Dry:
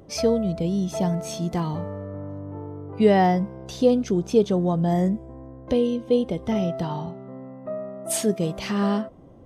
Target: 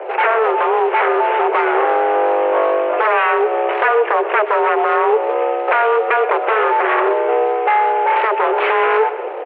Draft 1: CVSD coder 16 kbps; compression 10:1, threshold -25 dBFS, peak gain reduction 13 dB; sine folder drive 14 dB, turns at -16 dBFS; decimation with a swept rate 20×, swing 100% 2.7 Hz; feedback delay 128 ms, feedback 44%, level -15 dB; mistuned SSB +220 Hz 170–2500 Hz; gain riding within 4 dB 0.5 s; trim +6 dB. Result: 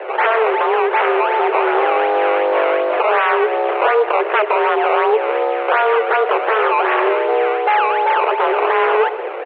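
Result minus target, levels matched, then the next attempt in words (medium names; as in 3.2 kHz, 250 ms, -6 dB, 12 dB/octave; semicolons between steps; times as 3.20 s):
decimation with a swept rate: distortion +12 dB
CVSD coder 16 kbps; compression 10:1, threshold -25 dBFS, peak gain reduction 13 dB; sine folder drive 14 dB, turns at -16 dBFS; decimation with a swept rate 5×, swing 100% 2.7 Hz; feedback delay 128 ms, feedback 44%, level -15 dB; mistuned SSB +220 Hz 170–2500 Hz; gain riding within 4 dB 0.5 s; trim +6 dB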